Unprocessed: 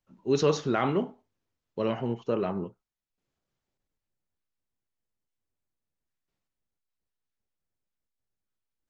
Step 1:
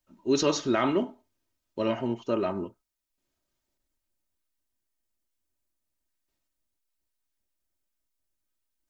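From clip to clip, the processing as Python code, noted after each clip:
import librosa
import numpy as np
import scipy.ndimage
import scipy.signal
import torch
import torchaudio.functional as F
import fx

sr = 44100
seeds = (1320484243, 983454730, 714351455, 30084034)

y = fx.high_shelf(x, sr, hz=5000.0, db=8.0)
y = y + 0.58 * np.pad(y, (int(3.2 * sr / 1000.0), 0))[:len(y)]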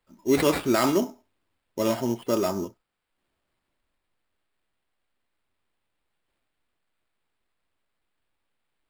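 y = fx.sample_hold(x, sr, seeds[0], rate_hz=6100.0, jitter_pct=0)
y = y * librosa.db_to_amplitude(3.0)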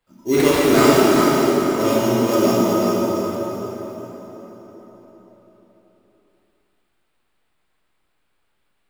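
y = x + 10.0 ** (-6.0 / 20.0) * np.pad(x, (int(386 * sr / 1000.0), 0))[:len(x)]
y = fx.rev_plate(y, sr, seeds[1], rt60_s=4.7, hf_ratio=0.7, predelay_ms=0, drr_db=-7.5)
y = y * librosa.db_to_amplitude(1.0)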